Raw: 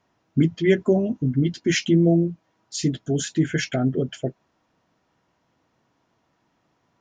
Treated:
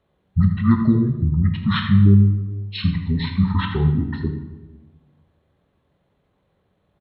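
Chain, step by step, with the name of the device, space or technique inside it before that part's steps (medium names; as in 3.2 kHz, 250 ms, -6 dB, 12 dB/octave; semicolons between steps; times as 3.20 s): monster voice (pitch shift -9 st; bass shelf 150 Hz +4 dB; delay 80 ms -12.5 dB; reverberation RT60 1.2 s, pre-delay 14 ms, DRR 5.5 dB); 3.12–3.71 s: low-pass 3.9 kHz 12 dB/octave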